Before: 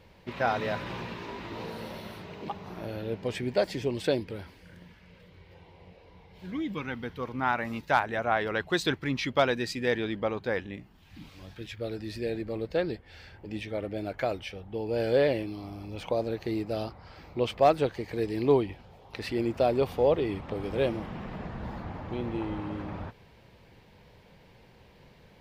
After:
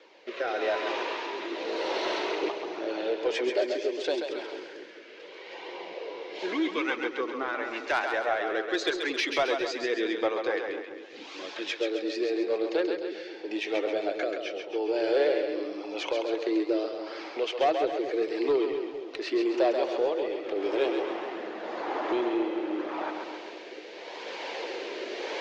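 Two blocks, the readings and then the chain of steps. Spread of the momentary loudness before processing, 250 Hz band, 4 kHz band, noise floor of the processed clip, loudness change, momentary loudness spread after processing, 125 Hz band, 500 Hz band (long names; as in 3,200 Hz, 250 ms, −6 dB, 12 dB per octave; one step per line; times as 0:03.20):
16 LU, +1.5 dB, +4.0 dB, −44 dBFS, +0.5 dB, 13 LU, below −25 dB, +1.5 dB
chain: camcorder AGC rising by 6.6 dB per second
Chebyshev band-pass filter 330–6,700 Hz, order 4
in parallel at +2 dB: downward compressor, threshold −39 dBFS, peak gain reduction 20.5 dB
on the sum: flanger 0.7 Hz, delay 0.5 ms, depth 2.8 ms, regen −47%
rotating-speaker cabinet horn 0.85 Hz
soft clipping −22 dBFS, distortion −19 dB
on a send: echo with a time of its own for lows and highs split 430 Hz, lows 220 ms, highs 134 ms, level −5.5 dB
on the sum: level +5 dB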